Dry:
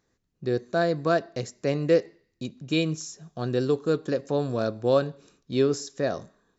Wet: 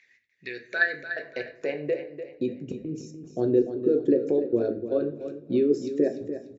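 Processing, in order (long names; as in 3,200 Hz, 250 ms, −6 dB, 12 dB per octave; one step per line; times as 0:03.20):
spectral envelope exaggerated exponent 1.5
parametric band 110 Hz +6 dB 0.53 octaves
harmonic and percussive parts rebalanced percussive +8 dB
high shelf with overshoot 1,600 Hz +10.5 dB, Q 3
downward compressor 2.5 to 1, threshold −27 dBFS, peak gain reduction 11.5 dB
band-pass filter sweep 2,200 Hz → 350 Hz, 0:00.49–0:02.70
gate pattern "xx.xxxxx.xx.x" 116 BPM −60 dB
on a send: repeating echo 295 ms, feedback 35%, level −10.5 dB
on the sum: rectangular room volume 47 cubic metres, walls mixed, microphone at 0.33 metres
level +8.5 dB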